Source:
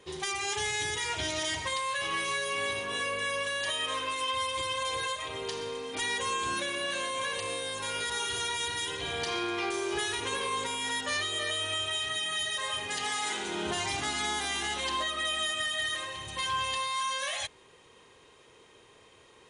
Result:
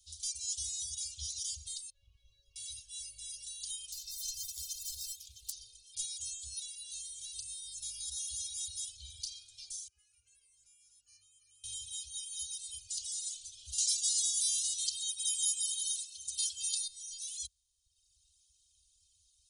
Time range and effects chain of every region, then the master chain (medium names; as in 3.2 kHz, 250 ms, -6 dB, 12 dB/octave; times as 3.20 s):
1.90–2.56 s: CVSD coder 64 kbps + low-pass 1 kHz
3.92–5.52 s: self-modulated delay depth 0.12 ms + high-order bell 740 Hz -10.5 dB 1.1 oct
9.88–11.64 s: three-band isolator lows -21 dB, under 210 Hz, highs -22 dB, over 2.7 kHz + static phaser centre 1.5 kHz, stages 4
13.78–16.88 s: high-pass 360 Hz 6 dB/octave + treble shelf 2.2 kHz +9.5 dB
whole clip: inverse Chebyshev band-stop 160–2000 Hz, stop band 50 dB; reverb removal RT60 1.2 s; trim +2 dB